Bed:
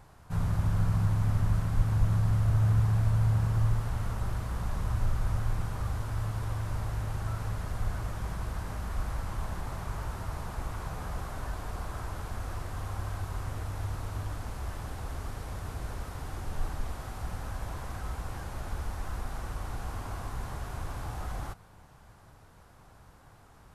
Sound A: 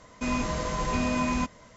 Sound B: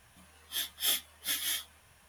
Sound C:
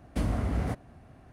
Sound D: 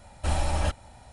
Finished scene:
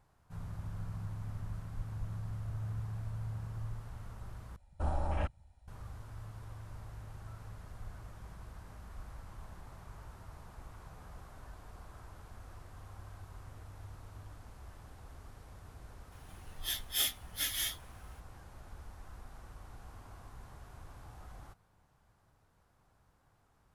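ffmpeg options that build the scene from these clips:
ffmpeg -i bed.wav -i cue0.wav -i cue1.wav -i cue2.wav -i cue3.wav -filter_complex "[0:a]volume=-14.5dB[link_01];[4:a]afwtdn=0.0158[link_02];[link_01]asplit=2[link_03][link_04];[link_03]atrim=end=4.564[link_05];[link_02]atrim=end=1.12,asetpts=PTS-STARTPTS,volume=-7dB[link_06];[link_04]atrim=start=5.676[link_07];[2:a]atrim=end=2.08,asetpts=PTS-STARTPTS,volume=-2dB,afade=type=in:duration=0.004:curve=hsin,afade=type=out:start_time=2.076:duration=0.004:curve=hsin,adelay=16120[link_08];[link_05][link_06]acrossfade=duration=0.004:curve1=hsin:curve2=hsin[link_09];[link_09][link_07]acrossfade=duration=0.004:curve1=hsin:curve2=hsin[link_10];[link_10][link_08]amix=inputs=2:normalize=0" out.wav

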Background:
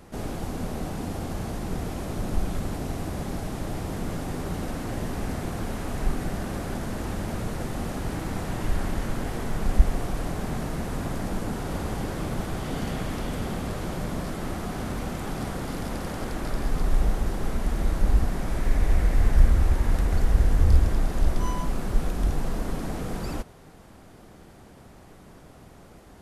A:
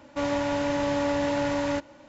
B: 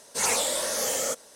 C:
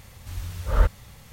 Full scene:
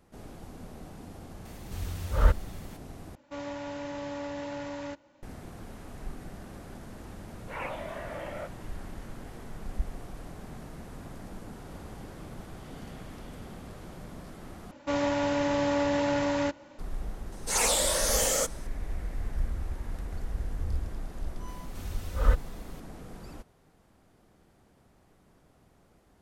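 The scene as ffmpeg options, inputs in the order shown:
ffmpeg -i bed.wav -i cue0.wav -i cue1.wav -i cue2.wav -filter_complex "[3:a]asplit=2[link_01][link_02];[1:a]asplit=2[link_03][link_04];[2:a]asplit=2[link_05][link_06];[0:a]volume=-13.5dB[link_07];[link_05]highpass=frequency=170:width_type=q:width=0.5412,highpass=frequency=170:width_type=q:width=1.307,lowpass=frequency=2600:width_type=q:width=0.5176,lowpass=frequency=2600:width_type=q:width=0.7071,lowpass=frequency=2600:width_type=q:width=1.932,afreqshift=58[link_08];[link_06]dynaudnorm=framelen=120:gausssize=5:maxgain=5dB[link_09];[link_02]aecho=1:1:4:0.54[link_10];[link_07]asplit=3[link_11][link_12][link_13];[link_11]atrim=end=3.154[link_14];[link_03]atrim=end=2.08,asetpts=PTS-STARTPTS,volume=-11dB[link_15];[link_12]atrim=start=5.226:end=14.714[link_16];[link_04]atrim=end=2.08,asetpts=PTS-STARTPTS,volume=-1dB[link_17];[link_13]atrim=start=16.786[link_18];[link_01]atrim=end=1.32,asetpts=PTS-STARTPTS,volume=-2dB,afade=type=in:duration=0.004:curve=hsin,afade=type=out:start_time=1.316:duration=0.004:curve=hsin,adelay=1450[link_19];[link_08]atrim=end=1.35,asetpts=PTS-STARTPTS,volume=-7.5dB,afade=type=in:duration=0.004:curve=hsin,afade=type=out:start_time=1.346:duration=0.004:curve=hsin,adelay=7330[link_20];[link_09]atrim=end=1.35,asetpts=PTS-STARTPTS,volume=-4dB,afade=type=in:duration=0.004:curve=hsin,afade=type=out:start_time=1.346:duration=0.004:curve=hsin,adelay=763812S[link_21];[link_10]atrim=end=1.32,asetpts=PTS-STARTPTS,volume=-5.5dB,afade=type=in:duration=0.004:curve=hsin,afade=type=out:start_time=1.316:duration=0.004:curve=hsin,adelay=947268S[link_22];[link_14][link_15]acrossfade=duration=0.004:curve1=hsin:curve2=hsin[link_23];[link_23][link_16]acrossfade=duration=0.004:curve1=hsin:curve2=hsin[link_24];[link_24][link_17]acrossfade=duration=0.004:curve1=hsin:curve2=hsin[link_25];[link_25][link_18]acrossfade=duration=0.004:curve1=hsin:curve2=hsin[link_26];[link_26][link_19][link_20][link_21][link_22]amix=inputs=5:normalize=0" out.wav

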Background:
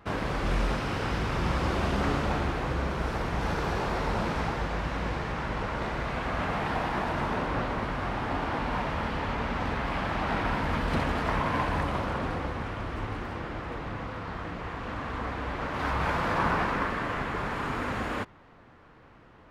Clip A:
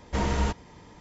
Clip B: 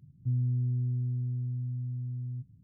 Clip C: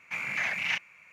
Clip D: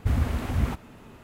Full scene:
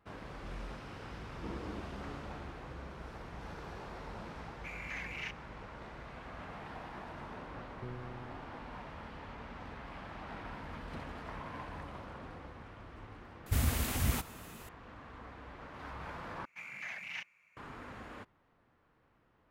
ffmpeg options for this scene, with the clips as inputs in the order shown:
ffmpeg -i bed.wav -i cue0.wav -i cue1.wav -i cue2.wav -i cue3.wav -filter_complex "[3:a]asplit=2[link_01][link_02];[0:a]volume=-16.5dB[link_03];[1:a]bandpass=frequency=310:width_type=q:width=2.8:csg=0[link_04];[2:a]acrusher=bits=3:mix=0:aa=0.5[link_05];[4:a]crystalizer=i=6:c=0[link_06];[link_03]asplit=2[link_07][link_08];[link_07]atrim=end=16.454[link_09];[link_02]atrim=end=1.12,asetpts=PTS-STARTPTS,volume=-13dB[link_10];[link_08]atrim=start=17.566[link_11];[link_04]atrim=end=1,asetpts=PTS-STARTPTS,volume=-8dB,afade=type=in:duration=0.004:curve=hsin,afade=type=out:start_time=0.996:duration=0.004:curve=hsin,adelay=1290[link_12];[link_01]atrim=end=1.12,asetpts=PTS-STARTPTS,volume=-12.5dB,afade=type=in:duration=0.004:curve=hsin,afade=type=out:start_time=1.116:duration=0.004:curve=hsin,adelay=199773S[link_13];[link_05]atrim=end=2.63,asetpts=PTS-STARTPTS,volume=-10dB,afade=type=in:duration=0.004:curve=hsin,afade=type=out:start_time=2.626:duration=0.004:curve=hsin,adelay=7550[link_14];[link_06]atrim=end=1.23,asetpts=PTS-STARTPTS,volume=-7dB,afade=type=in:duration=0.004:curve=hsin,afade=type=out:start_time=1.226:duration=0.004:curve=hsin,adelay=13460[link_15];[link_09][link_10]acrossfade=duration=0.004:curve1=hsin:curve2=hsin[link_16];[link_16][link_11]acrossfade=duration=0.004:curve1=hsin:curve2=hsin[link_17];[link_17][link_12][link_13][link_14][link_15]amix=inputs=5:normalize=0" out.wav

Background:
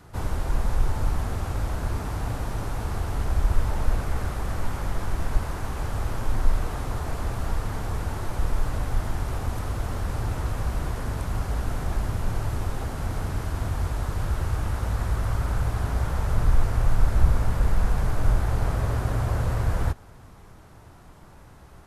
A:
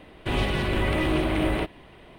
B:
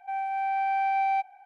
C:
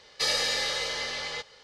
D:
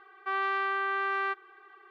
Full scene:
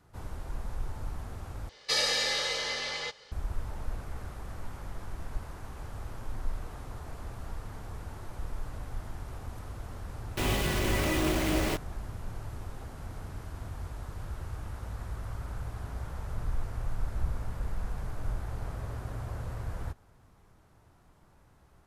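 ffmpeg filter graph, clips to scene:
ffmpeg -i bed.wav -i cue0.wav -i cue1.wav -i cue2.wav -filter_complex "[0:a]volume=-12.5dB[link_01];[1:a]acrusher=bits=4:mix=0:aa=0.000001[link_02];[link_01]asplit=2[link_03][link_04];[link_03]atrim=end=1.694[link_05];[3:a]atrim=end=1.63,asetpts=PTS-STARTPTS,volume=-1dB[link_06];[link_04]atrim=start=3.316[link_07];[link_02]atrim=end=2.18,asetpts=PTS-STARTPTS,volume=-4.5dB,afade=type=in:duration=0.004:curve=hsin,afade=type=out:start_time=2.176:duration=0.004:curve=hsin,adelay=10110[link_08];[link_05][link_06]acrossfade=duration=0.004:curve1=hsin:curve2=hsin[link_09];[link_09][link_07]acrossfade=duration=0.004:curve1=hsin:curve2=hsin[link_10];[link_10][link_08]amix=inputs=2:normalize=0" out.wav

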